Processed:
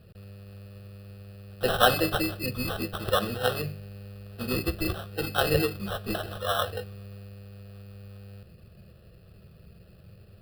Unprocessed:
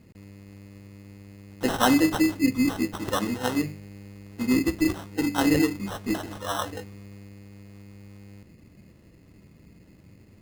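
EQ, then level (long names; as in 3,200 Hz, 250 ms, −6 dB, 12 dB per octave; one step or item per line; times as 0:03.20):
phaser with its sweep stopped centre 1,400 Hz, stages 8
+4.5 dB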